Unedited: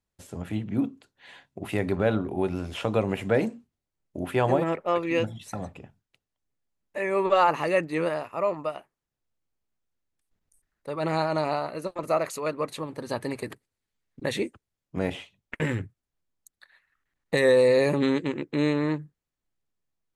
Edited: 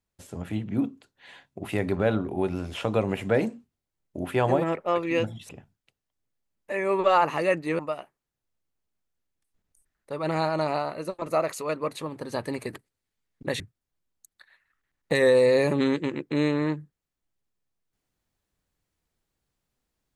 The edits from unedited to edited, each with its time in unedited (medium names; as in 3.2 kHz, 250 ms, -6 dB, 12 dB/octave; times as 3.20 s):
5.49–5.75 s: delete
8.05–8.56 s: delete
14.37–15.82 s: delete